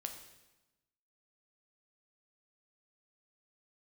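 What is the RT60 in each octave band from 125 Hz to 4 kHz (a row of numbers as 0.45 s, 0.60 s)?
1.2 s, 1.3 s, 1.0 s, 1.0 s, 1.0 s, 0.95 s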